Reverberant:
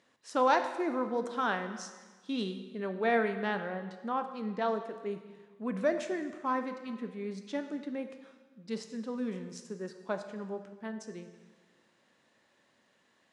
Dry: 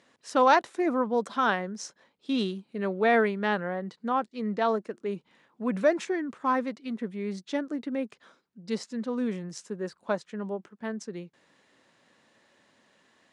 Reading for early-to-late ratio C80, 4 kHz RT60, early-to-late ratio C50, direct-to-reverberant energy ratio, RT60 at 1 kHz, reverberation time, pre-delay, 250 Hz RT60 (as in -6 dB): 10.5 dB, 1.3 s, 9.0 dB, 7.5 dB, 1.4 s, 1.4 s, 9 ms, 1.5 s